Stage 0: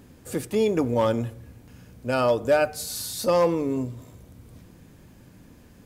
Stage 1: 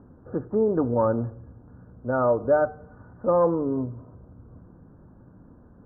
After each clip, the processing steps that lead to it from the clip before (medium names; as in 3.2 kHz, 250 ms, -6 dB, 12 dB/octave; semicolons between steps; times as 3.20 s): steep low-pass 1.5 kHz 72 dB/octave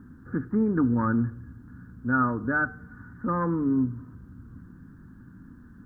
FFT filter 130 Hz 0 dB, 260 Hz +4 dB, 610 Hz -21 dB, 1.7 kHz +12 dB; trim +1.5 dB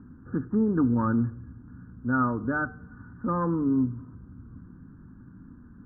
low-pass 1.4 kHz 24 dB/octave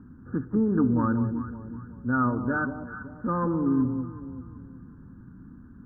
echo whose repeats swap between lows and highs 188 ms, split 920 Hz, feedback 59%, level -7 dB